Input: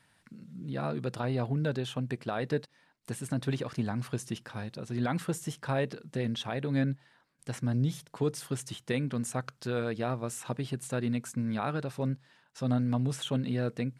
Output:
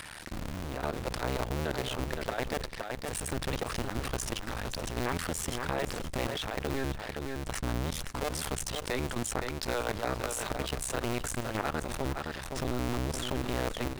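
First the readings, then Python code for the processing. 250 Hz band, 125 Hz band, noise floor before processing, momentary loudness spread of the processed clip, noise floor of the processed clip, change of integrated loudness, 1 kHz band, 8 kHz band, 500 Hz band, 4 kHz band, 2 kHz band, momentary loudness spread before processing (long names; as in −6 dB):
−4.5 dB, −5.0 dB, −68 dBFS, 4 LU, −41 dBFS, −1.0 dB, +3.5 dB, +6.0 dB, 0.0 dB, +4.5 dB, +4.0 dB, 8 LU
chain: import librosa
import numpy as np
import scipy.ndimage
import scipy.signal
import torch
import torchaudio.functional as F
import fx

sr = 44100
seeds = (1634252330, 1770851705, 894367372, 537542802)

p1 = fx.cycle_switch(x, sr, every=2, mode='muted')
p2 = fx.schmitt(p1, sr, flips_db=-47.0)
p3 = p1 + (p2 * 10.0 ** (-11.5 / 20.0))
p4 = fx.level_steps(p3, sr, step_db=17)
p5 = fx.peak_eq(p4, sr, hz=170.0, db=-7.5, octaves=2.2)
p6 = p5 + 10.0 ** (-14.0 / 20.0) * np.pad(p5, (int(517 * sr / 1000.0), 0))[:len(p5)]
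p7 = fx.env_flatten(p6, sr, amount_pct=70)
y = p7 * 10.0 ** (4.5 / 20.0)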